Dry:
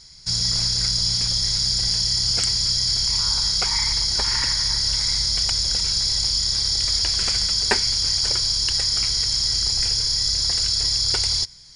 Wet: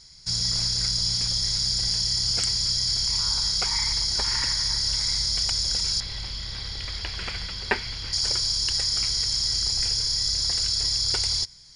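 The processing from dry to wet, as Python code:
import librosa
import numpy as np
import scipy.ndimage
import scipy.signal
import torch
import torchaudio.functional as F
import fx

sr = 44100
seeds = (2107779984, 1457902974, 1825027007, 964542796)

y = fx.high_shelf_res(x, sr, hz=4300.0, db=-14.0, q=1.5, at=(6.0, 8.13))
y = y * 10.0 ** (-3.5 / 20.0)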